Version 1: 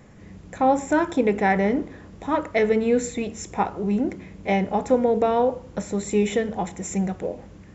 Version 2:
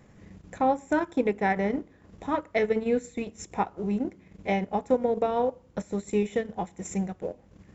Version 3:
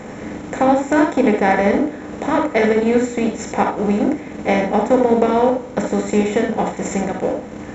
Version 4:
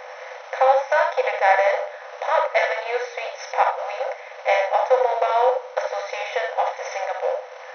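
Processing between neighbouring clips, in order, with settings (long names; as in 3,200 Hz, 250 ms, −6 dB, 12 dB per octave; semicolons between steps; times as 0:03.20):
transient designer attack +2 dB, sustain −10 dB; level −5.5 dB
compressor on every frequency bin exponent 0.6; reverb whose tail is shaped and stops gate 90 ms rising, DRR 3.5 dB; level +6 dB
linear-phase brick-wall band-pass 490–6,200 Hz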